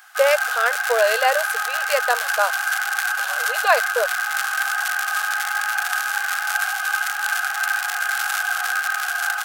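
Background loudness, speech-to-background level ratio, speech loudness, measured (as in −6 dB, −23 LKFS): −22.0 LKFS, 0.0 dB, −22.0 LKFS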